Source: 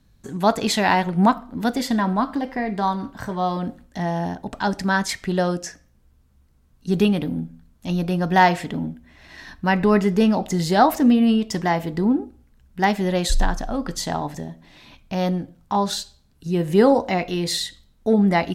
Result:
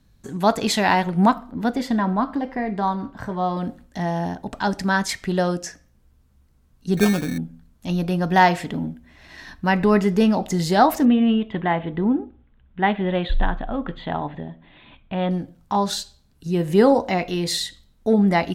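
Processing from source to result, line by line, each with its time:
1.51–3.57 high shelf 3700 Hz -10.5 dB
6.97–7.38 sample-rate reducer 2000 Hz
11.05–15.31 elliptic low-pass 3500 Hz

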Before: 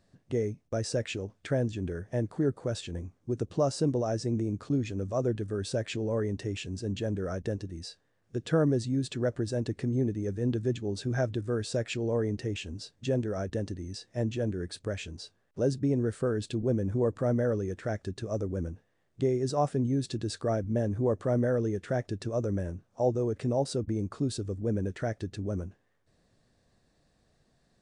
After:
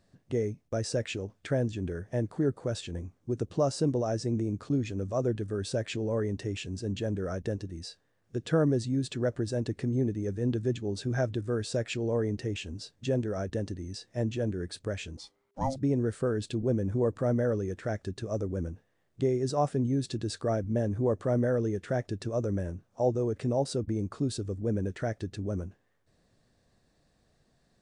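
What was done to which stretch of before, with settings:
15.17–15.76 ring modulator 400 Hz

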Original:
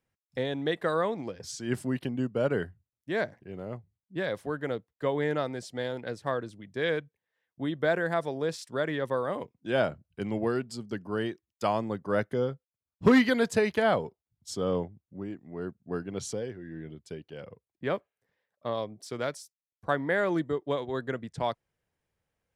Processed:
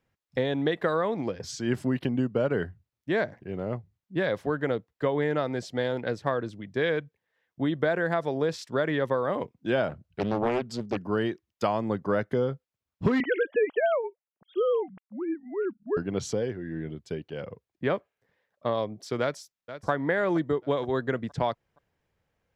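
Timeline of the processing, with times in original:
9.89–10.97 Doppler distortion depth 0.75 ms
13.2–15.97 sine-wave speech
19.21–19.9 echo throw 0.47 s, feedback 40%, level -14.5 dB
whole clip: bell 9100 Hz -8 dB 0.25 oct; compressor 6:1, threshold -28 dBFS; high shelf 5800 Hz -9 dB; gain +6.5 dB

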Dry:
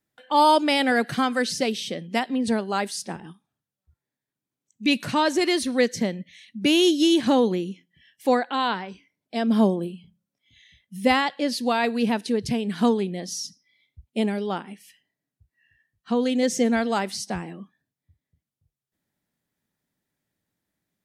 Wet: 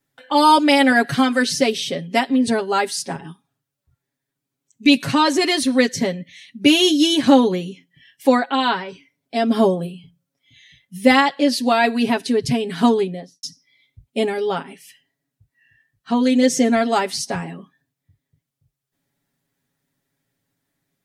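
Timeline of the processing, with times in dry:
12.98–13.43 studio fade out
whole clip: comb 7.3 ms, depth 80%; gain +4 dB

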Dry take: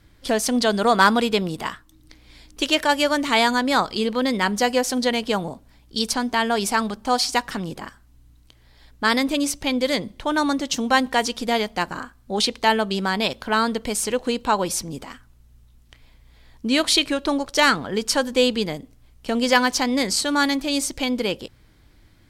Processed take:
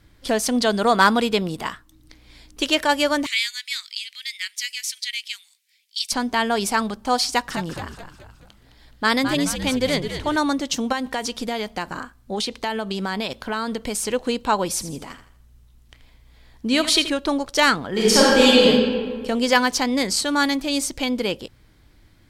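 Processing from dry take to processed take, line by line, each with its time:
3.26–6.12 elliptic high-pass 2100 Hz, stop band 80 dB
7.29–10.36 frequency-shifting echo 0.212 s, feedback 46%, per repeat -92 Hz, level -8.5 dB
10.92–14.06 compressor 5:1, threshold -21 dBFS
14.71–17.1 feedback echo 81 ms, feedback 38%, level -12 dB
17.92–18.62 reverb throw, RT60 1.8 s, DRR -8.5 dB

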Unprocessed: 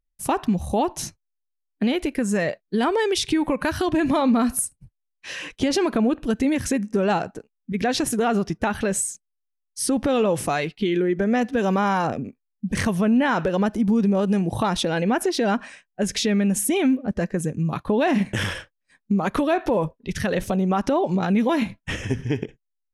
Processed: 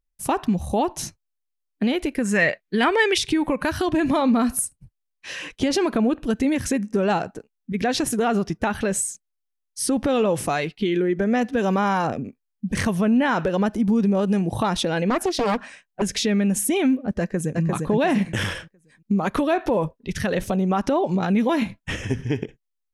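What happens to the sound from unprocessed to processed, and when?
2.25–3.18 bell 2100 Hz +11 dB 1.2 oct
15.1–16.02 Doppler distortion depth 0.76 ms
17.2–17.62 echo throw 0.35 s, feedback 30%, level -2.5 dB

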